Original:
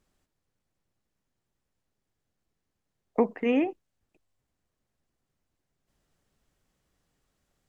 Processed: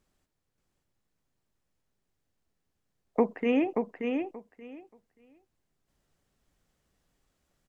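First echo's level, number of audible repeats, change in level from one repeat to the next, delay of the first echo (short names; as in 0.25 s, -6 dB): -5.0 dB, 2, -15.5 dB, 0.58 s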